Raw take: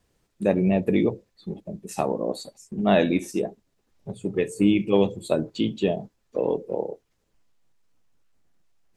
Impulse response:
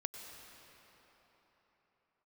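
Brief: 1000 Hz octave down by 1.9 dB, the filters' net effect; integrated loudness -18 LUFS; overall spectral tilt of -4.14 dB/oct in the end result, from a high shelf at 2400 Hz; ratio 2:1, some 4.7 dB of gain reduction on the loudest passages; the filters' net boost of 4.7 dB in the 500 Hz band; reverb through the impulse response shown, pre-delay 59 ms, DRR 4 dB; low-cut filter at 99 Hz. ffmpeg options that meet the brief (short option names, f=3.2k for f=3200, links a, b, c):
-filter_complex "[0:a]highpass=99,equalizer=f=500:t=o:g=8,equalizer=f=1k:t=o:g=-8,highshelf=f=2.4k:g=-6.5,acompressor=threshold=-20dB:ratio=2,asplit=2[a][b];[1:a]atrim=start_sample=2205,adelay=59[c];[b][c]afir=irnorm=-1:irlink=0,volume=-3dB[d];[a][d]amix=inputs=2:normalize=0,volume=6.5dB"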